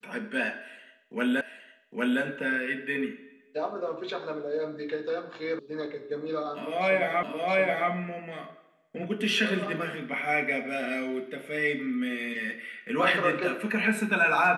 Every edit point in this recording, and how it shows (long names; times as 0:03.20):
0:01.41: the same again, the last 0.81 s
0:05.59: cut off before it has died away
0:07.23: the same again, the last 0.67 s